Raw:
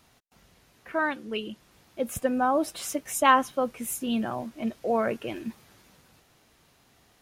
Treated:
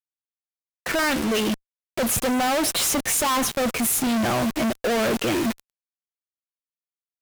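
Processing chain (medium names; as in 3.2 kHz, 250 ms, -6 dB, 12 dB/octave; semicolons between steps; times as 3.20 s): waveshaping leveller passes 5; fuzz box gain 42 dB, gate -45 dBFS; expander -29 dBFS; trim -7.5 dB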